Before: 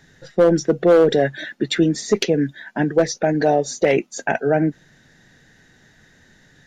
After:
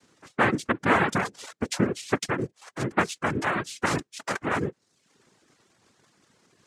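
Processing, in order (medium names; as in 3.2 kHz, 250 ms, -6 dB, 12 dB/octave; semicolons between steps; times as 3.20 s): 2.18–2.62 s: transient shaper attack -1 dB, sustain -7 dB; noise-vocoded speech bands 3; reverb removal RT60 0.62 s; trim -8 dB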